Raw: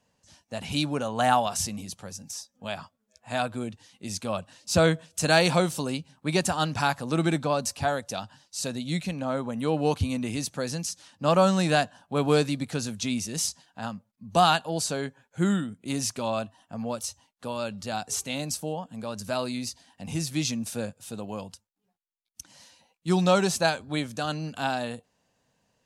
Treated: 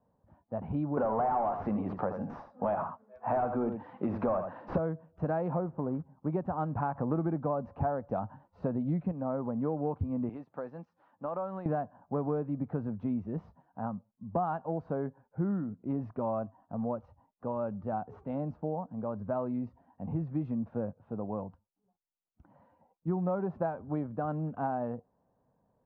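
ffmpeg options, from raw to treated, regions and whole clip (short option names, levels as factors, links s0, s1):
-filter_complex "[0:a]asettb=1/sr,asplit=3[s0][s1][s2];[s0]atrim=end=0.974[s3];[s1]atrim=start=0.97:end=4.78,asetpts=PTS-STARTPTS,afade=t=in:d=0.004:c=qsin,afade=t=out:st=3.806:d=0.004:c=qsin,asplit=2[s4][s5];[s5]highpass=f=720:p=1,volume=25.1,asoftclip=type=tanh:threshold=0.398[s6];[s4][s6]amix=inputs=2:normalize=0,lowpass=f=7100:p=1,volume=0.501,aecho=1:1:80:0.335,atrim=end_sample=168021[s7];[s2]atrim=start=4.776[s8];[s3][s7]acrossfade=d=0.004:c1=hsin:c2=qsin[s9];[s9][s8]acrossfade=d=0.004:c1=qsin:c2=hsin,asettb=1/sr,asplit=3[s10][s11][s12];[s10]atrim=end=5.564[s13];[s11]atrim=start=5.56:end=6.3,asetpts=PTS-STARTPTS,afade=t=in:d=0.004:c=qsin,afade=t=out:st=0.736:d=0.004:c=qsin,lowpass=1500,acrusher=bits=4:mode=log:mix=0:aa=0.000001[s14];[s12]atrim=start=6.296[s15];[s13][s14]acrossfade=d=0.004:c1=hsin:c2=qsin[s16];[s16][s15]acrossfade=d=0.004:c1=qsin:c2=hsin,asettb=1/sr,asplit=3[s17][s18][s19];[s17]atrim=end=6.954[s20];[s18]atrim=start=6.95:end=9.12,asetpts=PTS-STARTPTS,afade=t=in:d=0.004:c=qsin,afade=t=out:st=2.166:d=0.004:c=qsin,lowpass=10000,acontrast=68[s21];[s19]atrim=start=9.116[s22];[s20][s21]acrossfade=d=0.004:c1=hsin:c2=qsin[s23];[s23][s22]acrossfade=d=0.004:c1=qsin:c2=hsin,asettb=1/sr,asplit=3[s24][s25][s26];[s24]atrim=end=10.294[s27];[s25]atrim=start=10.29:end=11.66,asetpts=PTS-STARTPTS,afade=t=in:d=0.004:c=qsin,afade=t=out:st=1.366:d=0.004:c=qsin,highpass=f=670:p=1,highshelf=f=3900:g=11,acompressor=threshold=0.0355:ratio=6:attack=3.2:release=140:knee=1:detection=peak[s28];[s26]atrim=start=11.656[s29];[s27][s28]acrossfade=d=0.004:c1=hsin:c2=qsin[s30];[s30][s29]acrossfade=d=0.004:c1=qsin:c2=hsin,lowpass=f=1100:w=0.5412,lowpass=f=1100:w=1.3066,acompressor=threshold=0.0398:ratio=6"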